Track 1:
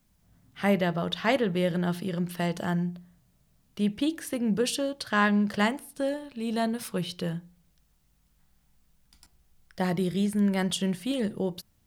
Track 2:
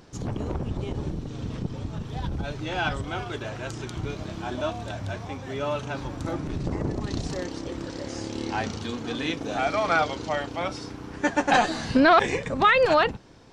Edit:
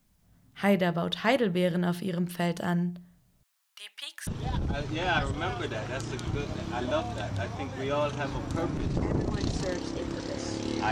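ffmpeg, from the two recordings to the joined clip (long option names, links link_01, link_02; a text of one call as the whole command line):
ffmpeg -i cue0.wav -i cue1.wav -filter_complex "[0:a]asettb=1/sr,asplit=3[link_01][link_02][link_03];[link_01]atrim=end=3.434[link_04];[link_02]atrim=start=3.43:end=4.27,asetpts=PTS-STARTPTS,afade=type=in:duration=0.004:curve=qsin,afade=type=out:start_time=0.836:duration=0.004:curve=qsin,highpass=frequency=1000:width=0.5412,highpass=frequency=1000:width=1.3066[link_05];[link_03]atrim=start=4.266[link_06];[link_04][link_05]acrossfade=duration=0.004:curve1=hsin:curve2=qsin[link_07];[link_07][link_06]acrossfade=duration=0.004:curve1=qsin:curve2=hsin,apad=whole_dur=10.91,atrim=end=10.91,atrim=end=4.272[link_08];[1:a]atrim=start=1.968:end=8.61[link_09];[link_08][link_09]acrossfade=duration=0.004:curve1=hsin:curve2=hsin" out.wav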